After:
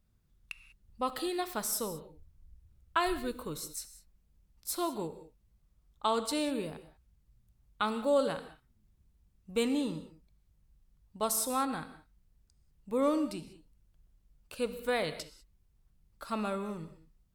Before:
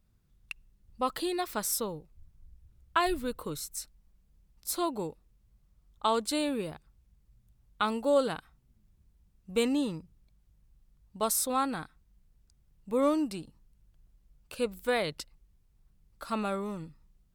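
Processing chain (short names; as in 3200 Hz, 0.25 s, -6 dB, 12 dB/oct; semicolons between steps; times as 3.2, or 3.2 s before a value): non-linear reverb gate 0.22 s flat, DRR 10.5 dB; gain -2.5 dB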